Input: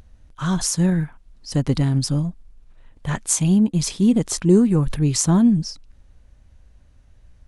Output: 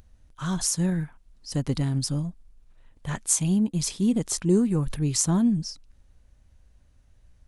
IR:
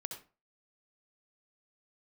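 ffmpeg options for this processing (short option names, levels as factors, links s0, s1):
-af "highshelf=f=6100:g=6.5,volume=0.473"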